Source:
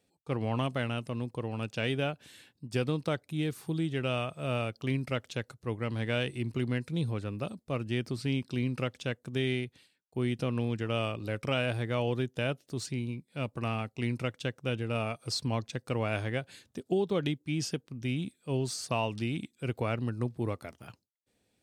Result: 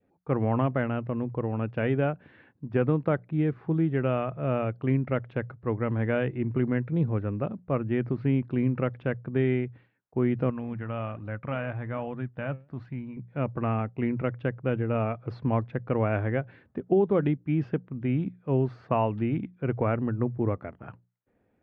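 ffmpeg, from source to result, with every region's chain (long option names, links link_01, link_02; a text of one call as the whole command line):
ffmpeg -i in.wav -filter_complex "[0:a]asettb=1/sr,asplit=3[link_01][link_02][link_03];[link_01]atrim=end=10.504[link_04];[link_02]atrim=start=10.5:end=13.17,asetpts=PTS-STARTPTS,afade=type=in:duration=0.004:curve=qsin,afade=type=out:start_time=2.666:duration=0.004:curve=qsin,equalizer=frequency=400:width=1.9:gain=-10,flanger=delay=0.6:depth=7:regen=86:speed=1.2:shape=sinusoidal[link_05];[link_03]atrim=start=13.166[link_06];[link_04][link_05]acrossfade=duration=0.004:curve1=hsin:curve2=qsin[link_07];[link_07][link_06]acrossfade=duration=0.004:curve1=qsin:curve2=hsin,lowpass=frequency=1800:width=0.5412,lowpass=frequency=1800:width=1.3066,bandreject=frequency=60:width_type=h:width=6,bandreject=frequency=120:width_type=h:width=6,bandreject=frequency=180:width_type=h:width=6,adynamicequalizer=threshold=0.00398:dfrequency=1100:dqfactor=0.86:tfrequency=1100:tqfactor=0.86:attack=5:release=100:ratio=0.375:range=1.5:mode=cutabove:tftype=bell,volume=6.5dB" out.wav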